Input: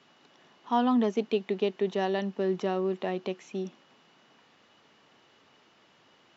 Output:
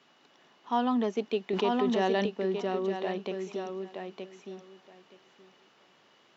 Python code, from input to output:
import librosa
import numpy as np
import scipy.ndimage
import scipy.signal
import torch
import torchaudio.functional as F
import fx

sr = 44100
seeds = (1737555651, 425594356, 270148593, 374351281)

y = fx.low_shelf(x, sr, hz=110.0, db=-11.5)
y = fx.echo_feedback(y, sr, ms=922, feedback_pct=16, wet_db=-6)
y = fx.env_flatten(y, sr, amount_pct=70, at=(1.53, 2.26))
y = y * 10.0 ** (-1.5 / 20.0)